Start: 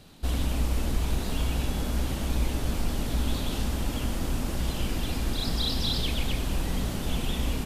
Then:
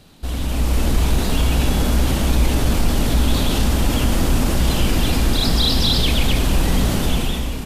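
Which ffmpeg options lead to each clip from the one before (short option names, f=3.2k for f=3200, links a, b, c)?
-filter_complex "[0:a]asplit=2[a][b];[b]alimiter=limit=-23.5dB:level=0:latency=1:release=21,volume=1dB[c];[a][c]amix=inputs=2:normalize=0,dynaudnorm=f=160:g=7:m=11.5dB,volume=-3dB"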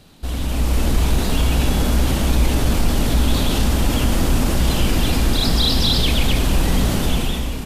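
-af anull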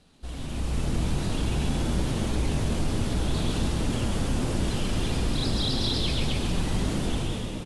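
-filter_complex "[0:a]flanger=delay=4.1:depth=7.8:regen=-56:speed=0.57:shape=sinusoidal,asplit=8[a][b][c][d][e][f][g][h];[b]adelay=136,afreqshift=84,volume=-6dB[i];[c]adelay=272,afreqshift=168,volume=-10.9dB[j];[d]adelay=408,afreqshift=252,volume=-15.8dB[k];[e]adelay=544,afreqshift=336,volume=-20.6dB[l];[f]adelay=680,afreqshift=420,volume=-25.5dB[m];[g]adelay=816,afreqshift=504,volume=-30.4dB[n];[h]adelay=952,afreqshift=588,volume=-35.3dB[o];[a][i][j][k][l][m][n][o]amix=inputs=8:normalize=0,volume=-7dB" -ar 24000 -c:a aac -b:a 96k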